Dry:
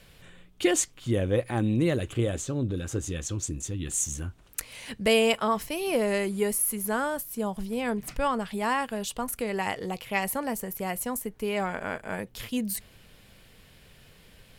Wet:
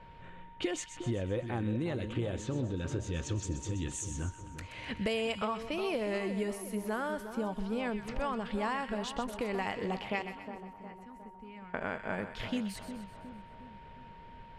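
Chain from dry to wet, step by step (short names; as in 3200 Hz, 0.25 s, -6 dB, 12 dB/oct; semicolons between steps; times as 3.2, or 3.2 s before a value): 10.22–11.74 passive tone stack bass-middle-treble 6-0-2; whine 930 Hz -54 dBFS; compressor 6:1, threshold -32 dBFS, peak gain reduction 13.5 dB; low-pass opened by the level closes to 1700 Hz, open at -25.5 dBFS; on a send: split-band echo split 1400 Hz, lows 0.36 s, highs 0.127 s, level -9.5 dB; on the sum: gain +1 dB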